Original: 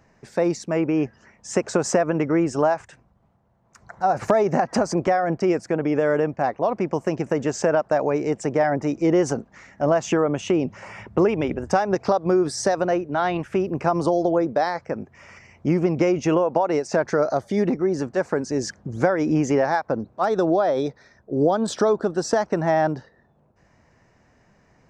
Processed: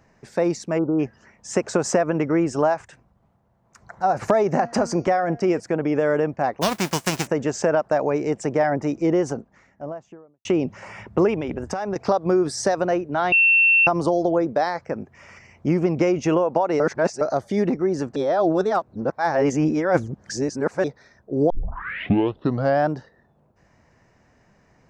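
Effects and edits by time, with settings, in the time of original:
0.78–0.99 spectral delete 1500–8300 Hz
4.55–5.6 de-hum 234.3 Hz, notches 29
6.61–7.26 spectral whitening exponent 0.3
8.73–10.45 studio fade out
11.37–11.96 compressor, threshold -22 dBFS
13.32–13.87 bleep 2700 Hz -12.5 dBFS
16.8–17.21 reverse
18.16–20.84 reverse
21.5 tape start 1.40 s

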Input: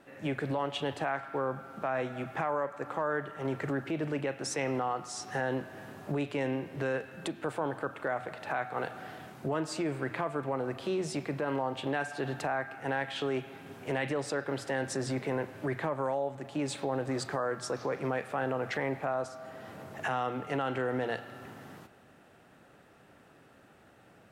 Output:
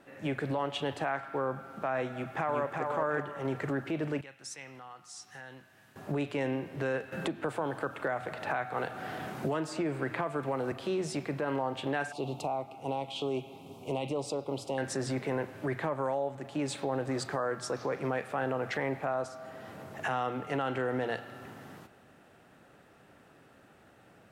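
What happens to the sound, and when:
2.11–2.85 echo throw 0.37 s, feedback 30%, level -3.5 dB
4.21–5.96 passive tone stack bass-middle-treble 5-5-5
7.12–10.72 three-band squash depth 70%
12.12–14.78 Chebyshev band-stop 1000–2800 Hz

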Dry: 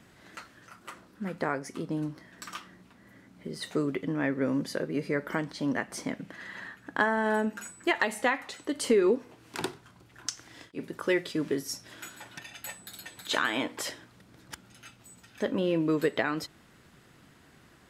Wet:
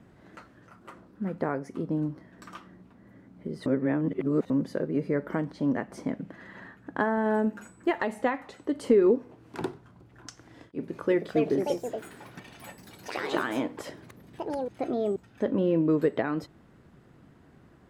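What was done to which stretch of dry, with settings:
3.66–4.5 reverse
7.35–7.96 block floating point 7-bit
10.48–15.87 echoes that change speed 0.403 s, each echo +4 st, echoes 2
whole clip: tilt shelf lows +8.5 dB, about 1500 Hz; gain -4.5 dB

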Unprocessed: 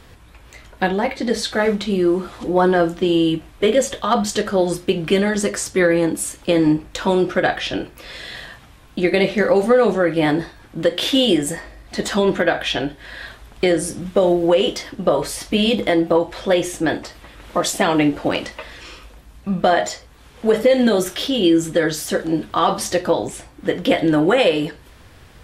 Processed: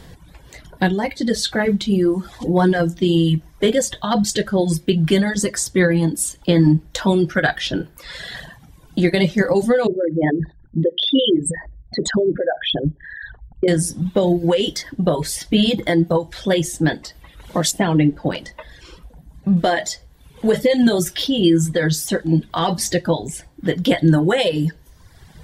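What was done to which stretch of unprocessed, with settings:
7.35–8.42 bell 1400 Hz +8 dB 0.41 oct
9.87–13.68 formant sharpening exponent 3
17.71–19.57 high shelf 2100 Hz -7.5 dB
whole clip: thirty-one-band EQ 160 Hz +11 dB, 1250 Hz -9 dB, 2500 Hz -8 dB; reverb removal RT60 1.1 s; dynamic EQ 600 Hz, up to -6 dB, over -30 dBFS, Q 0.83; gain +3.5 dB

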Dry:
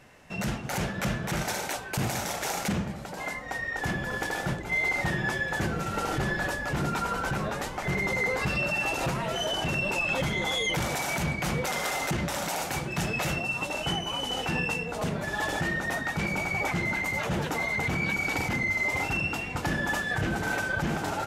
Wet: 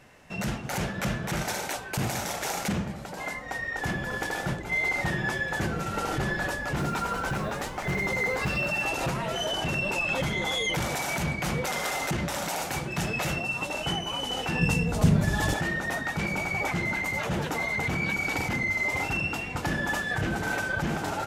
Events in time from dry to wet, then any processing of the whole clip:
6.79–8.84 short-mantissa float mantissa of 4-bit
14.61–15.54 tone controls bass +15 dB, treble +6 dB

